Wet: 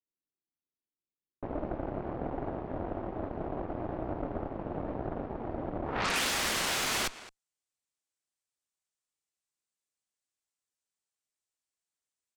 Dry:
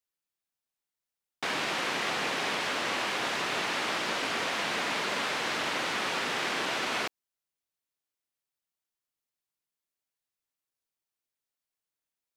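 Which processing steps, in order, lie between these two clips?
low-pass sweep 330 Hz -> 8100 Hz, 5.84–6.35; echo 0.215 s -15.5 dB; added harmonics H 8 -9 dB, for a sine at -17 dBFS; gain -4 dB

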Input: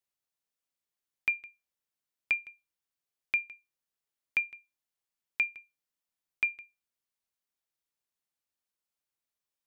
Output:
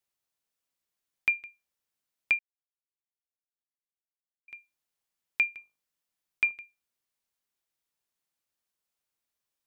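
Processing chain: 2.39–4.48 mute; 5.54–6.52 de-hum 50.79 Hz, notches 25; gain +3 dB

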